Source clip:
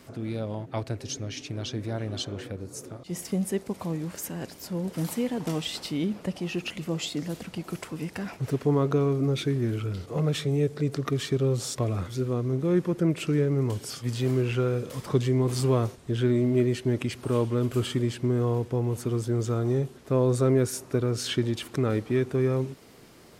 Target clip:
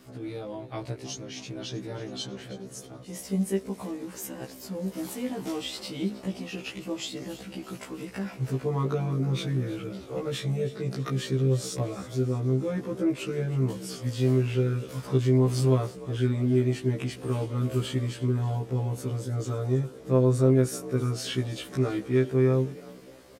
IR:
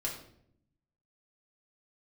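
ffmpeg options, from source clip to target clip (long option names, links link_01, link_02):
-filter_complex "[0:a]asplit=2[link_01][link_02];[link_02]asplit=5[link_03][link_04][link_05][link_06][link_07];[link_03]adelay=321,afreqshift=48,volume=-16.5dB[link_08];[link_04]adelay=642,afreqshift=96,volume=-21.5dB[link_09];[link_05]adelay=963,afreqshift=144,volume=-26.6dB[link_10];[link_06]adelay=1284,afreqshift=192,volume=-31.6dB[link_11];[link_07]adelay=1605,afreqshift=240,volume=-36.6dB[link_12];[link_08][link_09][link_10][link_11][link_12]amix=inputs=5:normalize=0[link_13];[link_01][link_13]amix=inputs=2:normalize=0,afftfilt=real='re*1.73*eq(mod(b,3),0)':imag='im*1.73*eq(mod(b,3),0)':win_size=2048:overlap=0.75"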